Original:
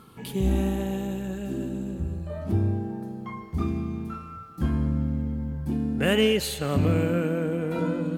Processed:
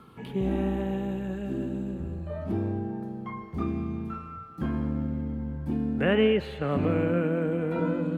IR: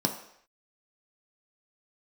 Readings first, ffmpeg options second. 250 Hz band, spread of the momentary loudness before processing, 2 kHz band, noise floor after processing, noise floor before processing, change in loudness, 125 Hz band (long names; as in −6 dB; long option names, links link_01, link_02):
−1.0 dB, 11 LU, −2.0 dB, −42 dBFS, −42 dBFS, −2.0 dB, −4.5 dB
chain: -filter_complex "[0:a]bass=frequency=250:gain=-1,treble=frequency=4000:gain=-11,acrossover=split=150|1000|3000[link_01][link_02][link_03][link_04];[link_01]asoftclip=type=hard:threshold=-35dB[link_05];[link_04]acompressor=threshold=-60dB:ratio=6[link_06];[link_05][link_02][link_03][link_06]amix=inputs=4:normalize=0"